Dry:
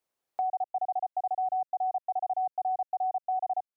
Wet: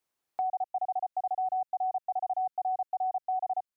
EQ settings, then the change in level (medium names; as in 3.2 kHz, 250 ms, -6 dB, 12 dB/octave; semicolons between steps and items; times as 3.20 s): peaking EQ 550 Hz -5.5 dB 0.77 oct; +1.5 dB